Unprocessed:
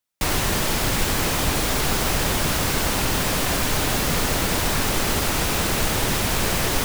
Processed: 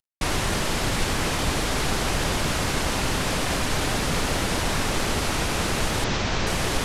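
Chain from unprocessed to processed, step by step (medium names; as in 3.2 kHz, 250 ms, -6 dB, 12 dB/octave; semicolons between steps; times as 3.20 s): CVSD coder 64 kbps; 6.04–6.47 s: steep low-pass 6.6 kHz 36 dB/octave; trim -1.5 dB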